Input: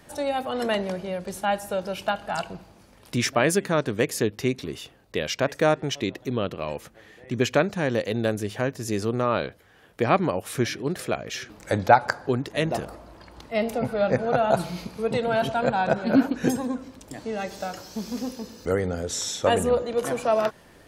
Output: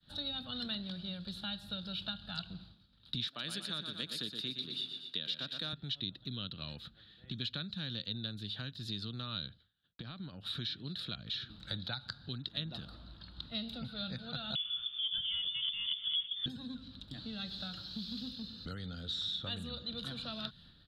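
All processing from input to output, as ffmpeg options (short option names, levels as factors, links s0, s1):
-filter_complex "[0:a]asettb=1/sr,asplit=3[s0][s1][s2];[s0]atrim=end=3.274[s3];[s1]atrim=start=3.27:end=5.73,asetpts=PTS-STARTPTS,afade=t=in:d=0.004:c=qsin,afade=t=out:st=2.456:d=0.004:c=qsin,highpass=340,equalizer=f=9600:t=o:w=1.1:g=10.5,aecho=1:1:118|236|354|472|590|708:0.398|0.215|0.116|0.0627|0.0339|0.0183,atrim=end_sample=108486[s4];[s2]atrim=start=5.726[s5];[s3][s4]acrossfade=d=0.004:c1=hsin:c2=qsin[s6];[s6][s5]acrossfade=d=0.004:c1=qsin:c2=hsin,asettb=1/sr,asplit=3[s7][s8][s9];[s7]atrim=end=9.474[s10];[s8]atrim=start=9.47:end=10.45,asetpts=PTS-STARTPTS,afade=t=in:d=0.004:c=qsin,afade=t=out:st=0.976:d=0.004:c=qsin,agate=range=0.0224:threshold=0.00224:ratio=3:release=100:detection=peak,lowpass=8400,acompressor=threshold=0.0282:ratio=10:attack=3.2:release=140:knee=1:detection=peak[s11];[s9]atrim=start=10.446[s12];[s10][s11]acrossfade=d=0.004:c1=hsin:c2=qsin[s13];[s13][s12]acrossfade=d=0.004:c1=qsin:c2=hsin,asettb=1/sr,asplit=3[s14][s15][s16];[s14]atrim=end=14.554[s17];[s15]atrim=start=14.55:end=16.46,asetpts=PTS-STARTPTS,afade=t=in:d=0.004:c=qsin,afade=t=out:st=1.906:d=0.004:c=qsin,asubboost=boost=12:cutoff=79,lowpass=f=3100:t=q:w=0.5098,lowpass=f=3100:t=q:w=0.6013,lowpass=f=3100:t=q:w=0.9,lowpass=f=3100:t=q:w=2.563,afreqshift=-3600[s18];[s16]atrim=start=16.456[s19];[s17][s18]acrossfade=d=0.004:c1=hsin:c2=qsin[s20];[s20][s19]acrossfade=d=0.004:c1=qsin:c2=hsin,agate=range=0.0224:threshold=0.00562:ratio=3:detection=peak,firequalizer=gain_entry='entry(180,0);entry(400,-18);entry(990,-16);entry(1400,-3);entry(2100,-16);entry(3800,14);entry(5900,-22)':delay=0.05:min_phase=1,acrossover=split=220|2400[s21][s22][s23];[s21]acompressor=threshold=0.00631:ratio=4[s24];[s22]acompressor=threshold=0.00447:ratio=4[s25];[s23]acompressor=threshold=0.0141:ratio=4[s26];[s24][s25][s26]amix=inputs=3:normalize=0,volume=0.841"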